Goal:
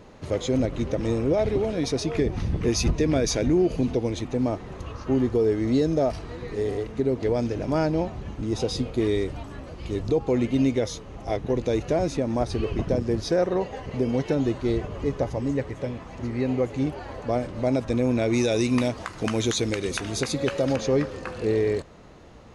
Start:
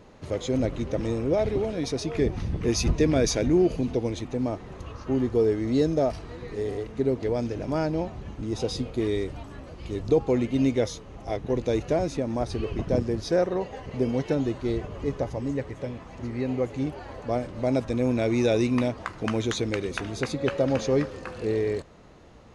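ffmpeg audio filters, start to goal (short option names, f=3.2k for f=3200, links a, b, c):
-filter_complex "[0:a]asettb=1/sr,asplit=3[a][b][c];[a]atrim=end=18.334[d];[b]atrim=start=18.33:end=20.76,asetpts=PTS-STARTPTS,afade=t=in:d=0.004:c=qsin,afade=t=out:st=2.426:d=0.004:c=qsin,highshelf=f=4.1k:g=10.5[e];[c]atrim=start=20.756[f];[d][e]acrossfade=d=0.004:c1=hsin:c2=qsin[g];[g][f]acrossfade=d=0.004:c1=qsin:c2=hsin,alimiter=limit=-16.5dB:level=0:latency=1:release=138,volume=3dB"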